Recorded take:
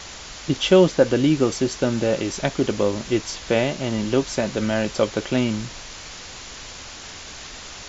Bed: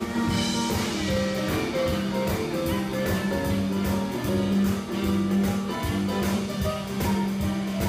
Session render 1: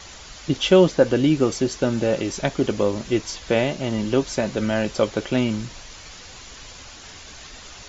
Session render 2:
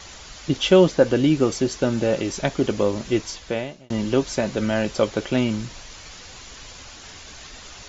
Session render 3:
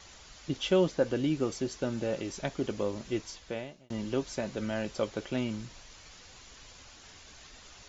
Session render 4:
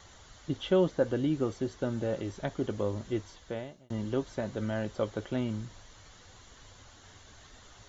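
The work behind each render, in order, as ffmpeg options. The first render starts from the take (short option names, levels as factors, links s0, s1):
-af "afftdn=nr=6:nf=-38"
-filter_complex "[0:a]asplit=2[s0][s1];[s0]atrim=end=3.9,asetpts=PTS-STARTPTS,afade=t=out:st=3.2:d=0.7[s2];[s1]atrim=start=3.9,asetpts=PTS-STARTPTS,afade=t=in:d=0.004:c=hsin[s3];[s2][s3]concat=n=2:v=0:a=1"
-af "volume=0.282"
-filter_complex "[0:a]acrossover=split=4200[s0][s1];[s1]acompressor=threshold=0.00158:ratio=4:attack=1:release=60[s2];[s0][s2]amix=inputs=2:normalize=0,equalizer=f=100:t=o:w=0.33:g=9,equalizer=f=2500:t=o:w=0.33:g=-10,equalizer=f=5000:t=o:w=0.33:g=-7"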